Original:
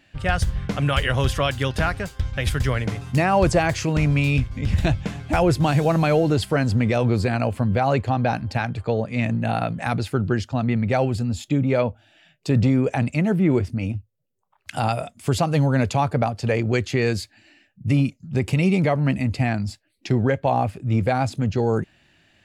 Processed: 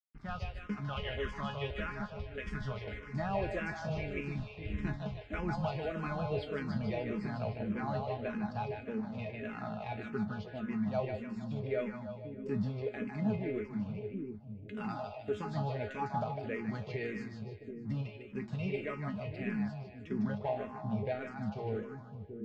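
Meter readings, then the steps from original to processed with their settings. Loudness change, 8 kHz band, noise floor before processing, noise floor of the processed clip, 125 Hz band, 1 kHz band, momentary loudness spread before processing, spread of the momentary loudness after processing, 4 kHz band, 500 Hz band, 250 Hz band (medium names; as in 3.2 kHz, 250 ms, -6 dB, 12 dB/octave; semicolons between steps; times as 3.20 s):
-16.0 dB, under -25 dB, -63 dBFS, -49 dBFS, -18.0 dB, -15.5 dB, 7 LU, 7 LU, -18.0 dB, -14.0 dB, -14.5 dB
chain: feedback comb 210 Hz, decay 0.24 s, harmonics all, mix 90%; crossover distortion -49.5 dBFS; distance through air 200 m; two-band feedback delay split 440 Hz, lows 734 ms, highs 152 ms, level -5 dB; barber-pole phaser -1.7 Hz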